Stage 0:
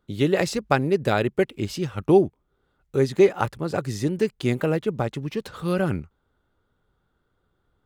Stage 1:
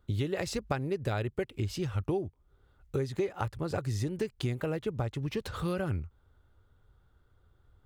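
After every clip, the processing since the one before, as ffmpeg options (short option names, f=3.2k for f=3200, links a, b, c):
-af "lowshelf=f=130:t=q:w=1.5:g=8.5,acompressor=threshold=-29dB:ratio=6"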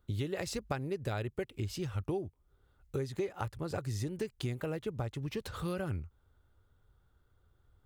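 -af "highshelf=f=6.8k:g=5,volume=-4dB"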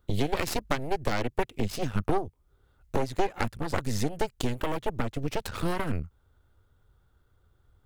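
-af "aeval=exprs='0.1*(cos(1*acos(clip(val(0)/0.1,-1,1)))-cos(1*PI/2))+0.0398*(cos(2*acos(clip(val(0)/0.1,-1,1)))-cos(2*PI/2))+0.00891*(cos(3*acos(clip(val(0)/0.1,-1,1)))-cos(3*PI/2))+0.0251*(cos(6*acos(clip(val(0)/0.1,-1,1)))-cos(6*PI/2))':c=same,volume=6.5dB"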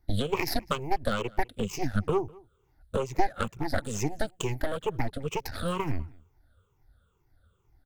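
-filter_complex "[0:a]afftfilt=real='re*pow(10,18/40*sin(2*PI*(0.74*log(max(b,1)*sr/1024/100)/log(2)-(-2.2)*(pts-256)/sr)))':imag='im*pow(10,18/40*sin(2*PI*(0.74*log(max(b,1)*sr/1024/100)/log(2)-(-2.2)*(pts-256)/sr)))':win_size=1024:overlap=0.75,asplit=2[a][b];[b]adelay=204.1,volume=-24dB,highshelf=f=4k:g=-4.59[c];[a][c]amix=inputs=2:normalize=0,volume=-4dB"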